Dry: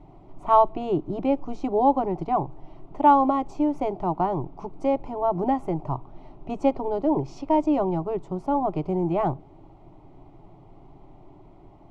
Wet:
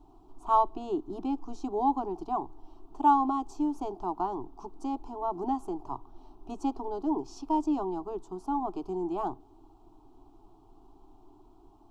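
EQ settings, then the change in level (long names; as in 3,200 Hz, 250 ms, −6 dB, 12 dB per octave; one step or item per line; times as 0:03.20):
high-shelf EQ 3,600 Hz +12 dB
phaser with its sweep stopped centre 560 Hz, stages 6
−5.5 dB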